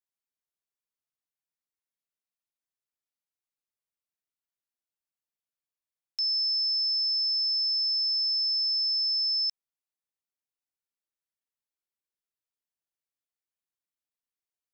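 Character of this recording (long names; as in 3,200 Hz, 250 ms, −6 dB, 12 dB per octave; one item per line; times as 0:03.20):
background noise floor −94 dBFS
spectral slope +1.0 dB per octave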